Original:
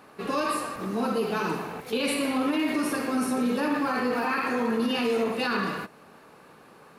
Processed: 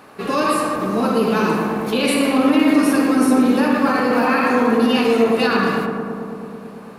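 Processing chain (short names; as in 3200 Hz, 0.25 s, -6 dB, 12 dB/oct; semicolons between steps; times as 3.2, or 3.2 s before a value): darkening echo 0.11 s, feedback 84%, low-pass 1800 Hz, level -5 dB; gain +7.5 dB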